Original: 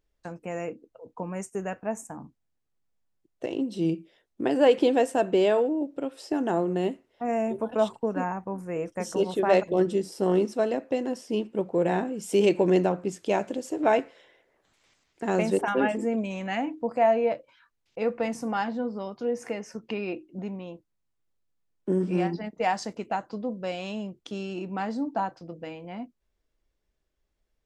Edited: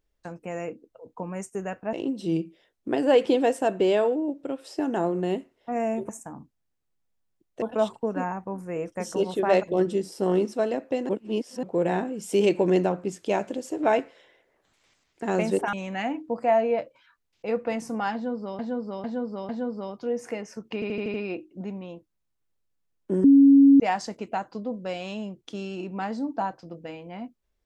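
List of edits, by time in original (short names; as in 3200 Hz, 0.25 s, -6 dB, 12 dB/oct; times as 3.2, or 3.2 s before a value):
1.93–3.46 move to 7.62
11.09–11.63 reverse
15.73–16.26 cut
18.67–19.12 loop, 4 plays
19.92 stutter 0.08 s, 6 plays
22.02–22.58 bleep 277 Hz -10.5 dBFS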